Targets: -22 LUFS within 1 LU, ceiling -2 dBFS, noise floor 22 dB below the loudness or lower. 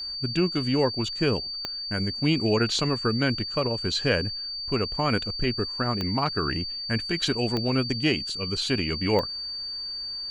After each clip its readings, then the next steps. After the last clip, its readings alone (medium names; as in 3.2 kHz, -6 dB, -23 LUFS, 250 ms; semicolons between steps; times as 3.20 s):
clicks found 4; steady tone 4.6 kHz; tone level -31 dBFS; loudness -26.0 LUFS; peak level -9.5 dBFS; loudness target -22.0 LUFS
-> de-click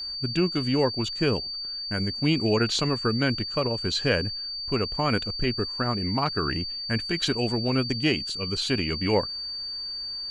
clicks found 0; steady tone 4.6 kHz; tone level -31 dBFS
-> band-stop 4.6 kHz, Q 30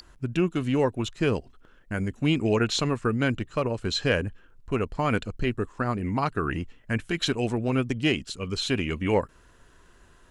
steady tone not found; loudness -27.0 LUFS; peak level -10.5 dBFS; loudness target -22.0 LUFS
-> trim +5 dB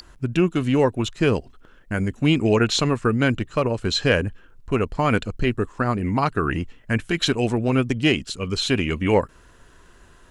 loudness -22.0 LUFS; peak level -5.5 dBFS; noise floor -51 dBFS